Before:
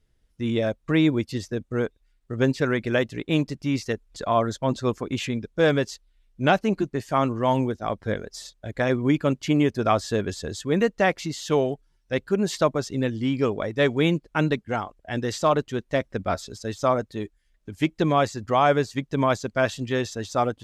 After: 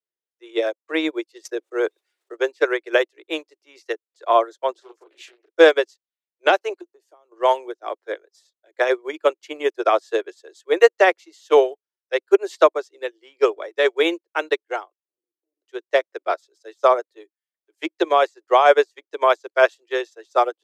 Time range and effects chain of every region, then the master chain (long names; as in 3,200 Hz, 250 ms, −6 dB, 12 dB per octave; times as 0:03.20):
0:01.45–0:02.37: low-shelf EQ 87 Hz +10 dB + envelope flattener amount 70%
0:04.72–0:05.57: downward compressor 8 to 1, threshold −28 dBFS + double-tracking delay 33 ms −3 dB + highs frequency-modulated by the lows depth 0.47 ms
0:06.81–0:07.32: downward compressor 10 to 1, threshold −29 dBFS + parametric band 2,000 Hz −10.5 dB 1.3 octaves
0:14.97–0:15.62: lower of the sound and its delayed copy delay 1.2 ms + inverse Chebyshev low-pass filter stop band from 830 Hz, stop band 60 dB + downward compressor 1.5 to 1, threshold −59 dBFS
whole clip: Butterworth high-pass 330 Hz 96 dB per octave; boost into a limiter +12 dB; expander for the loud parts 2.5 to 1, over −28 dBFS